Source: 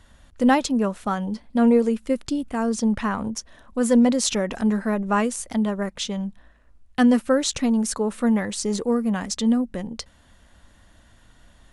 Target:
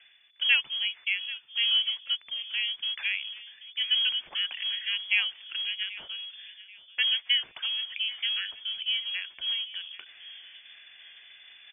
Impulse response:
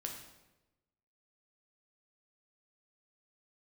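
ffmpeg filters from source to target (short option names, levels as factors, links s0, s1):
-filter_complex "[0:a]highshelf=f=2700:g=-9.5,acrusher=bits=6:mode=log:mix=0:aa=0.000001,areverse,acompressor=mode=upward:threshold=0.0316:ratio=2.5,areverse,acrossover=split=540 2100:gain=0.224 1 0.112[s0][s1][s2];[s0][s1][s2]amix=inputs=3:normalize=0,asplit=2[s3][s4];[s4]adelay=784,lowpass=f=2200:p=1,volume=0.15,asplit=2[s5][s6];[s6]adelay=784,lowpass=f=2200:p=1,volume=0.37,asplit=2[s7][s8];[s8]adelay=784,lowpass=f=2200:p=1,volume=0.37[s9];[s3][s5][s7][s9]amix=inputs=4:normalize=0,lowpass=f=3000:t=q:w=0.5098,lowpass=f=3000:t=q:w=0.6013,lowpass=f=3000:t=q:w=0.9,lowpass=f=3000:t=q:w=2.563,afreqshift=-3500"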